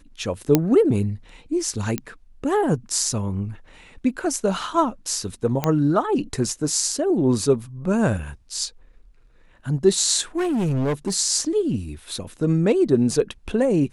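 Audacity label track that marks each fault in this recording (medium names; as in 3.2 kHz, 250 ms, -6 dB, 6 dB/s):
0.550000	0.550000	pop -2 dBFS
1.980000	1.980000	pop -9 dBFS
5.640000	5.640000	pop -7 dBFS
10.370000	11.150000	clipped -19 dBFS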